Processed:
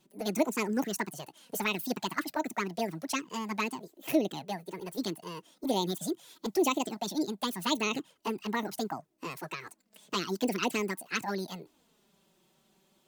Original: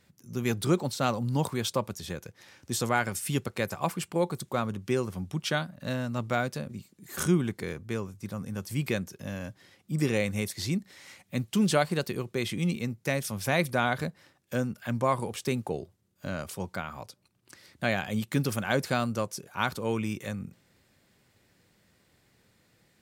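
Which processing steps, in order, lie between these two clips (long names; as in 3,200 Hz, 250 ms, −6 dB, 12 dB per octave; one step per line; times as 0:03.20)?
change of speed 1.76×
flanger swept by the level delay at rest 5.4 ms, full sweep at −22.5 dBFS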